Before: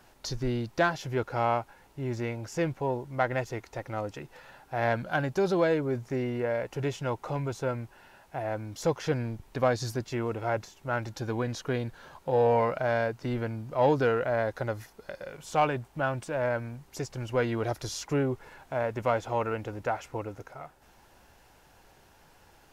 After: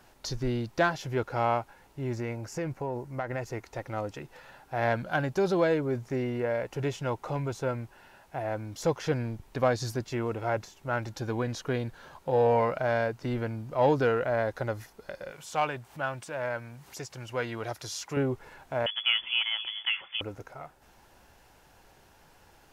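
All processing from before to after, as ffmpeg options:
ffmpeg -i in.wav -filter_complex "[0:a]asettb=1/sr,asplit=3[link_01][link_02][link_03];[link_01]atrim=end=2.134[link_04];[link_02]atrim=start=2.13:end=3.64,asetpts=PTS-STARTPTS,afade=type=in:duration=0.004:curve=qsin,afade=type=out:start_time=1.506:duration=0.004:curve=qsin,equalizer=frequency=3400:width_type=o:width=0.47:gain=-7,acompressor=threshold=-28dB:ratio=5:attack=3.2:release=140:knee=1:detection=peak[link_05];[link_03]atrim=start=3.636[link_06];[link_04][link_05]acrossfade=duration=0.004:curve1=hsin:curve2=qsin[link_07];[link_07][link_06]acrossfade=duration=0.004:curve1=qsin:curve2=hsin,asettb=1/sr,asplit=3[link_08][link_09][link_10];[link_08]atrim=end=15.314[link_11];[link_09]atrim=start=15.31:end=18.17,asetpts=PTS-STARTPTS,afade=type=in:duration=0.004:curve=qsin,afade=type=out:start_time=2.856:duration=0.004:curve=qsin,highpass=110,equalizer=frequency=270:width=0.47:gain=-7.5,acompressor=mode=upward:threshold=-41dB:ratio=2.5:attack=3.2:release=140:knee=2.83:detection=peak[link_12];[link_10]atrim=start=18.166[link_13];[link_11][link_12]acrossfade=duration=0.004:curve1=hsin:curve2=qsin[link_14];[link_14][link_13]acrossfade=duration=0.004:curve1=qsin:curve2=hsin,asettb=1/sr,asplit=3[link_15][link_16][link_17];[link_15]atrim=end=18.864[link_18];[link_16]atrim=start=18.86:end=20.21,asetpts=PTS-STARTPTS,afade=type=in:duration=0.004:curve=qsin,afade=type=out:start_time=1.346:duration=0.004:curve=qsin,aecho=1:1:258:0.15,atrim=end_sample=59535,lowpass=frequency=3000:width_type=q:width=0.5098,lowpass=frequency=3000:width_type=q:width=0.6013,lowpass=frequency=3000:width_type=q:width=0.9,lowpass=frequency=3000:width_type=q:width=2.563,afreqshift=-3500[link_19];[link_17]atrim=start=20.206[link_20];[link_18][link_19]acrossfade=duration=0.004:curve1=hsin:curve2=qsin[link_21];[link_21][link_20]acrossfade=duration=0.004:curve1=qsin:curve2=hsin" out.wav

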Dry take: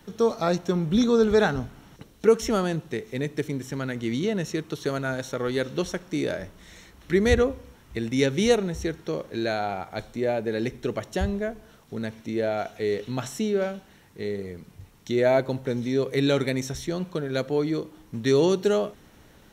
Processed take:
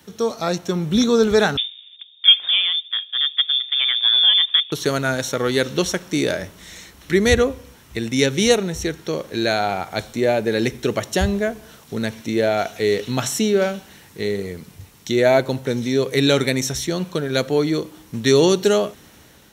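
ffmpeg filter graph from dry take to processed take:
ffmpeg -i in.wav -filter_complex "[0:a]asettb=1/sr,asplit=3[link_01][link_02][link_03];[link_01]atrim=end=1.574[link_04];[link_02]atrim=start=1.57:end=4.72,asetpts=PTS-STARTPTS,afade=type=in:duration=0.004:curve=qsin,afade=type=out:start_time=3.146:duration=0.004:curve=qsin,adynamicsmooth=sensitivity=7:basefreq=540,lowpass=frequency=3100:width_type=q:width=0.5098,lowpass=frequency=3100:width_type=q:width=0.6013,lowpass=frequency=3100:width_type=q:width=0.9,lowpass=frequency=3100:width_type=q:width=2.563,afreqshift=-3700[link_05];[link_03]atrim=start=4.716[link_06];[link_04][link_05]acrossfade=duration=0.004:curve1=hsin:curve2=qsin[link_07];[link_07][link_06]acrossfade=duration=0.004:curve1=qsin:curve2=hsin,highpass=53,highshelf=frequency=2500:gain=8,dynaudnorm=framelen=330:gausssize=5:maxgain=7dB" out.wav

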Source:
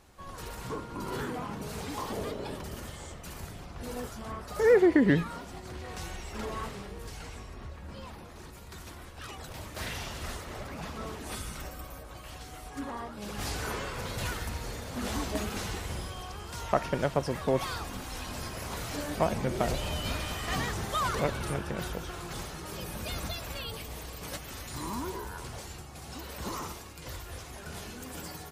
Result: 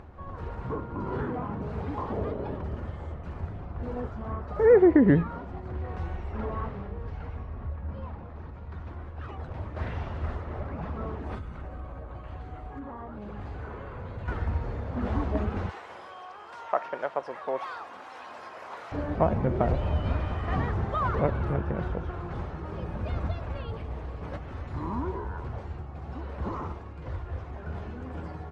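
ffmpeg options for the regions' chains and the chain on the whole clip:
ffmpeg -i in.wav -filter_complex "[0:a]asettb=1/sr,asplit=3[link_01][link_02][link_03];[link_01]atrim=end=6.354[link_04];[link_02]atrim=start=6.35:end=8.9,asetpts=PTS-STARTPTS,afade=type=in:duration=0.004:curve=qsin,afade=type=out:start_time=2.546:duration=0.004:curve=qsin,lowpass=6300,equalizer=frequency=360:width=6.1:gain=-6[link_05];[link_03]atrim=start=8.896[link_06];[link_04][link_05]acrossfade=duration=0.004:curve1=hsin:curve2=qsin[link_07];[link_07][link_06]acrossfade=duration=0.004:curve1=qsin:curve2=hsin,asettb=1/sr,asplit=3[link_08][link_09][link_10];[link_08]atrim=end=11.384[link_11];[link_09]atrim=start=11.38:end=14.28,asetpts=PTS-STARTPTS,afade=type=in:duration=0.004:curve=qsin,afade=type=out:start_time=2.896:duration=0.004:curve=qsin,bandreject=frequency=5400:width=7.7,acompressor=threshold=-39dB:ratio=6:attack=3.2:release=140:knee=1:detection=peak[link_12];[link_10]atrim=start=14.276[link_13];[link_11][link_12]acrossfade=duration=0.004:curve1=hsin:curve2=qsin[link_14];[link_14][link_13]acrossfade=duration=0.004:curve1=qsin:curve2=hsin,asettb=1/sr,asplit=3[link_15][link_16][link_17];[link_15]atrim=end=15.694[link_18];[link_16]atrim=start=15.69:end=18.92,asetpts=PTS-STARTPTS,afade=type=in:duration=0.004:curve=qsin,afade=type=out:start_time=3.226:duration=0.004:curve=qsin,highpass=680,aemphasis=mode=production:type=cd[link_19];[link_17]atrim=start=18.916[link_20];[link_18][link_19]acrossfade=duration=0.004:curve1=hsin:curve2=qsin[link_21];[link_21][link_20]acrossfade=duration=0.004:curve1=qsin:curve2=hsin,lowpass=1300,equalizer=frequency=81:width_type=o:width=0.87:gain=7.5,acompressor=mode=upward:threshold=-44dB:ratio=2.5,volume=3.5dB" out.wav

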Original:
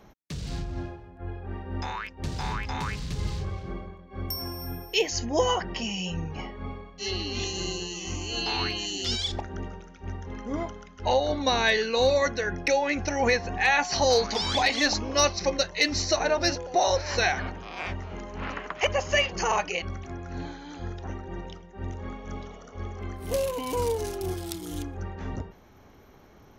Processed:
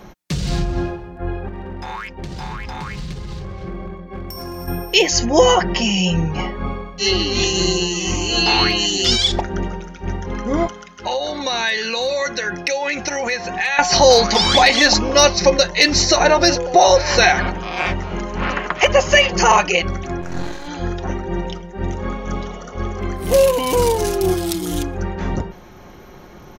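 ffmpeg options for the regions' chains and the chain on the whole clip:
ffmpeg -i in.wav -filter_complex "[0:a]asettb=1/sr,asplit=3[link_01][link_02][link_03];[link_01]atrim=end=1.484[link_04];[link_02]atrim=start=1.48:end=4.68,asetpts=PTS-STARTPTS,afade=type=in:duration=0.004:curve=qsin,afade=type=out:start_time=3.196:duration=0.004:curve=qsin,equalizer=frequency=12000:width_type=o:width=1.9:gain=-6.5,acompressor=threshold=-37dB:ratio=8:attack=3.2:release=140:knee=1:detection=peak,volume=35.5dB,asoftclip=hard,volume=-35.5dB[link_05];[link_03]atrim=start=4.676[link_06];[link_04][link_05]acrossfade=duration=0.004:curve1=hsin:curve2=qsin[link_07];[link_07][link_06]acrossfade=duration=0.004:curve1=qsin:curve2=hsin,asettb=1/sr,asplit=3[link_08][link_09][link_10];[link_08]atrim=end=10.674[link_11];[link_09]atrim=start=10.67:end=13.79,asetpts=PTS-STARTPTS,afade=type=in:duration=0.004:curve=qsin,afade=type=out:start_time=3.116:duration=0.004:curve=qsin,highpass=frequency=380:poles=1,acompressor=threshold=-28dB:ratio=5:attack=3.2:release=140:knee=1:detection=peak,equalizer=frequency=610:width_type=o:width=2.5:gain=-4.5[link_12];[link_10]atrim=start=13.786[link_13];[link_11][link_12]acrossfade=duration=0.004:curve1=hsin:curve2=qsin[link_14];[link_14][link_13]acrossfade=duration=0.004:curve1=qsin:curve2=hsin,asettb=1/sr,asplit=3[link_15][link_16][link_17];[link_15]atrim=end=20.214[link_18];[link_16]atrim=start=20.21:end=20.68,asetpts=PTS-STARTPTS,afade=type=in:duration=0.004:curve=qsin,afade=type=out:start_time=0.466:duration=0.004:curve=qsin,equalizer=frequency=7600:width_type=o:width=0.54:gain=8.5,aeval=exprs='max(val(0),0)':channel_layout=same,asplit=2[link_19][link_20];[link_20]adelay=31,volume=-11dB[link_21];[link_19][link_21]amix=inputs=2:normalize=0,atrim=end_sample=20727[link_22];[link_17]atrim=start=20.676[link_23];[link_18][link_22]acrossfade=duration=0.004:curve1=hsin:curve2=qsin[link_24];[link_24][link_23]acrossfade=duration=0.004:curve1=qsin:curve2=hsin,aecho=1:1:5.6:0.39,alimiter=level_in=13.5dB:limit=-1dB:release=50:level=0:latency=1,volume=-1dB" out.wav

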